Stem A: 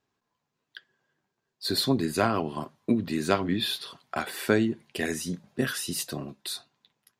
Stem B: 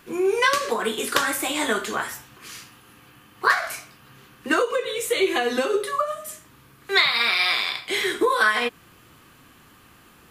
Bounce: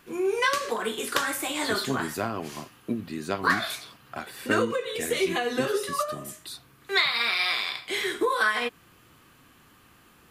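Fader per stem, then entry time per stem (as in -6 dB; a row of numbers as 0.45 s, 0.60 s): -5.5 dB, -4.5 dB; 0.00 s, 0.00 s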